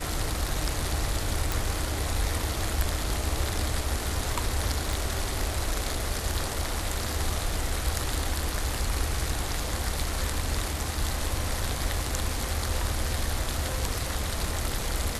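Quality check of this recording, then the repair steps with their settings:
1.52 s: pop
4.93 s: pop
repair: de-click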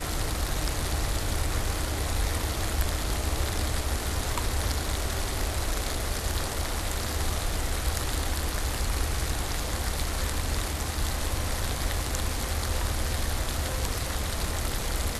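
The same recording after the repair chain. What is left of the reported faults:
4.93 s: pop

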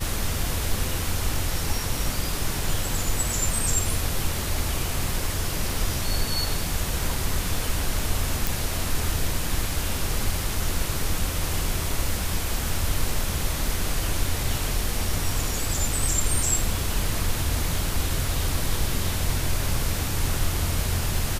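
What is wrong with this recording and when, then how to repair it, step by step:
8.47 s: pop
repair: de-click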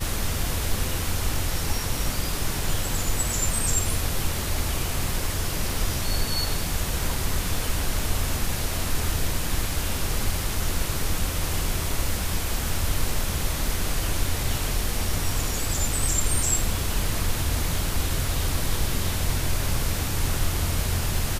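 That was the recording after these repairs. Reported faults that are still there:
nothing left

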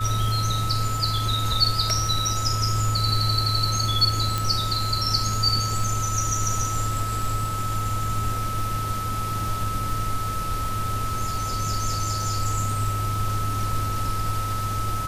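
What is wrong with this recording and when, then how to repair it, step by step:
crackle 36 per s -31 dBFS
whine 1.3 kHz -28 dBFS
4.38 s: pop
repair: de-click; band-stop 1.3 kHz, Q 30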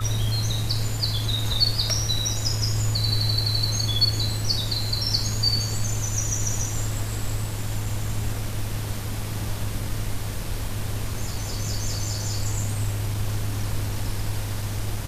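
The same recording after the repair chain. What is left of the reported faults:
nothing left

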